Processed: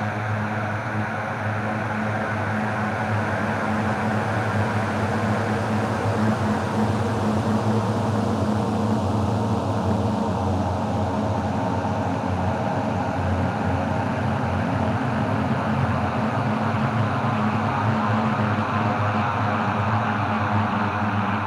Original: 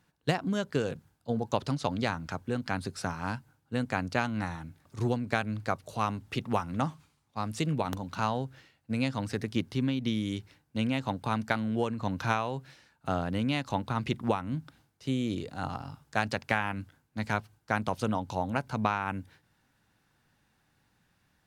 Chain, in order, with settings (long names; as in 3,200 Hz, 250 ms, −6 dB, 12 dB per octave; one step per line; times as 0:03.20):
low-shelf EQ 130 Hz +9 dB
extreme stretch with random phases 14×, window 1.00 s, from 0:17.51
highs frequency-modulated by the lows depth 0.35 ms
level +6.5 dB